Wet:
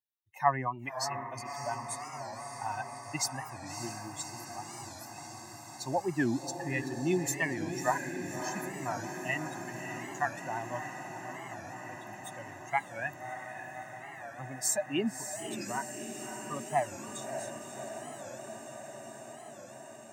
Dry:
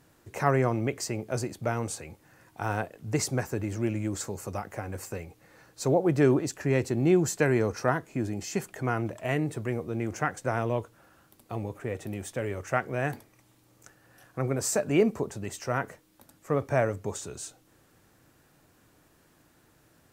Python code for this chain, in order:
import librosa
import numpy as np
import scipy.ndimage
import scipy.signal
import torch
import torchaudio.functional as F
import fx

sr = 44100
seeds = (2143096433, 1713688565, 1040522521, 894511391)

y = fx.bin_expand(x, sr, power=2.0)
y = scipy.signal.sosfilt(scipy.signal.butter(2, 300.0, 'highpass', fs=sr, output='sos'), y)
y = y + 0.99 * np.pad(y, (int(1.1 * sr / 1000.0), 0))[:len(y)]
y = fx.echo_diffused(y, sr, ms=599, feedback_pct=79, wet_db=-8)
y = fx.record_warp(y, sr, rpm=45.0, depth_cents=160.0)